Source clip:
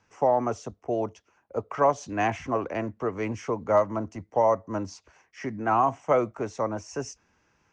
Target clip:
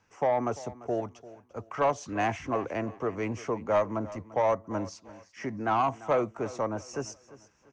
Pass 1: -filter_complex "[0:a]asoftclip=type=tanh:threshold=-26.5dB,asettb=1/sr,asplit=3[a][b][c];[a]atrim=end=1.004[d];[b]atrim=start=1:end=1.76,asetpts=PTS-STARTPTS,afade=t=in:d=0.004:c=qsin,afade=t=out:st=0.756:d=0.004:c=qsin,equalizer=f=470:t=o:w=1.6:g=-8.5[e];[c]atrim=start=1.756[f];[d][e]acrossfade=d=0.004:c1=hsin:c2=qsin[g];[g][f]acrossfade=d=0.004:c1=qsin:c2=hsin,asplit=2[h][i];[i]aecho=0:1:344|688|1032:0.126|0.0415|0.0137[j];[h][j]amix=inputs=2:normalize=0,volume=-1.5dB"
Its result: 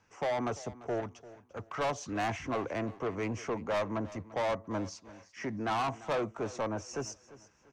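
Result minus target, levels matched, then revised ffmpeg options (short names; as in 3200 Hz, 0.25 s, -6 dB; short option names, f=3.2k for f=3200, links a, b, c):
soft clip: distortion +10 dB
-filter_complex "[0:a]asoftclip=type=tanh:threshold=-16dB,asettb=1/sr,asplit=3[a][b][c];[a]atrim=end=1.004[d];[b]atrim=start=1:end=1.76,asetpts=PTS-STARTPTS,afade=t=in:d=0.004:c=qsin,afade=t=out:st=0.756:d=0.004:c=qsin,equalizer=f=470:t=o:w=1.6:g=-8.5[e];[c]atrim=start=1.756[f];[d][e]acrossfade=d=0.004:c1=hsin:c2=qsin[g];[g][f]acrossfade=d=0.004:c1=qsin:c2=hsin,asplit=2[h][i];[i]aecho=0:1:344|688|1032:0.126|0.0415|0.0137[j];[h][j]amix=inputs=2:normalize=0,volume=-1.5dB"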